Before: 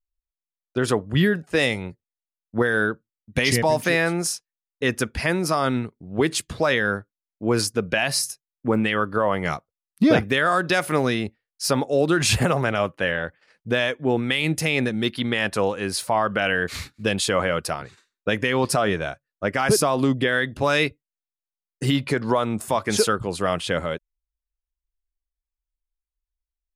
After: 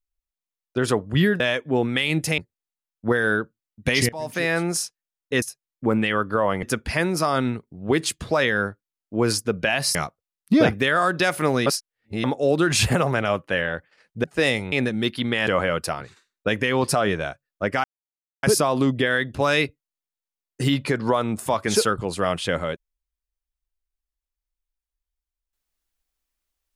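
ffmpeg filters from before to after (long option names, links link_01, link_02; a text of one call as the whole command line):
ffmpeg -i in.wav -filter_complex "[0:a]asplit=13[link_01][link_02][link_03][link_04][link_05][link_06][link_07][link_08][link_09][link_10][link_11][link_12][link_13];[link_01]atrim=end=1.402[link_14];[link_02]atrim=start=13.738:end=14.722[link_15];[link_03]atrim=start=1.878:end=3.59,asetpts=PTS-STARTPTS,afade=type=out:start_time=1.708:duration=0.004:curve=hsin:silence=0.0749894[link_16];[link_04]atrim=start=3.59:end=4.922,asetpts=PTS-STARTPTS,afade=type=in:duration=0.52:silence=0.0749894[link_17];[link_05]atrim=start=8.238:end=9.452[link_18];[link_06]atrim=start=4.918:end=8.242[link_19];[link_07]atrim=start=9.448:end=11.162[link_20];[link_08]atrim=start=11.158:end=11.742,asetpts=PTS-STARTPTS,areverse[link_21];[link_09]atrim=start=11.738:end=13.742[link_22];[link_10]atrim=start=1.398:end=1.882[link_23];[link_11]atrim=start=14.718:end=15.472[link_24];[link_12]atrim=start=17.278:end=19.65,asetpts=PTS-STARTPTS,afade=type=out:start_time=2.368:duration=0.004:curve=hsin,apad=pad_dur=0.59[link_25];[link_13]atrim=start=19.65,asetpts=PTS-STARTPTS,afade=type=in:duration=0.004:curve=hsin[link_26];[link_14][link_15]acrossfade=duration=0.004:curve1=hsin:curve2=hsin[link_27];[link_16][link_17]concat=n=2:v=0:a=1[link_28];[link_27][link_28]acrossfade=duration=0.004:curve1=hsin:curve2=hsin[link_29];[link_29][link_18]acrossfade=duration=0.004:curve1=hsin:curve2=hsin[link_30];[link_30][link_19]acrossfade=duration=0.004:curve1=hsin:curve2=hsin[link_31];[link_31][link_20]acrossfade=duration=0.004:curve1=hsin:curve2=hsin[link_32];[link_32][link_21]acrossfade=duration=0.004:curve1=hsin:curve2=hsin[link_33];[link_33][link_22]acrossfade=duration=0.004:curve1=hsin:curve2=hsin[link_34];[link_34][link_23]acrossfade=duration=0.004:curve1=hsin:curve2=hsin[link_35];[link_35][link_24]acrossfade=duration=0.004:curve1=hsin:curve2=hsin[link_36];[link_25][link_26]concat=n=2:v=0:a=1[link_37];[link_36][link_37]acrossfade=duration=0.004:curve1=hsin:curve2=hsin" out.wav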